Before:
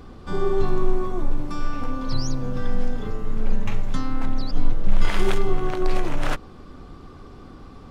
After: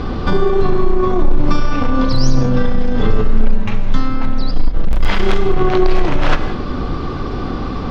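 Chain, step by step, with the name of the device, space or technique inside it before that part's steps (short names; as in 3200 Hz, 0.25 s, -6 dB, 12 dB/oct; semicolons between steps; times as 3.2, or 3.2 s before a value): LPF 5300 Hz 24 dB/oct; loud club master (compressor 1.5:1, threshold -19 dBFS, peak gain reduction 4 dB; hard clip -14 dBFS, distortion -20 dB; maximiser +24.5 dB); non-linear reverb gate 0.22 s flat, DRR 9 dB; gain -4 dB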